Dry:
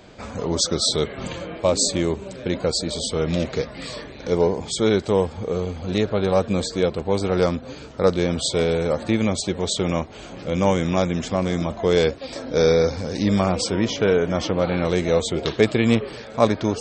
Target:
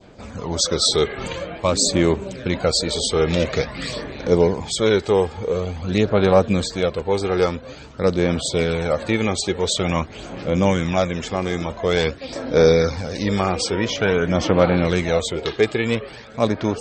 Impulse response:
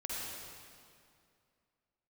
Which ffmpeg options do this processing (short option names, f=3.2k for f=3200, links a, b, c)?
-af "adynamicequalizer=threshold=0.0224:dfrequency=1900:dqfactor=0.73:tfrequency=1900:tqfactor=0.73:attack=5:release=100:ratio=0.375:range=2:mode=boostabove:tftype=bell,dynaudnorm=f=240:g=5:m=11.5dB,aphaser=in_gain=1:out_gain=1:delay=2.5:decay=0.4:speed=0.48:type=sinusoidal,volume=-4dB"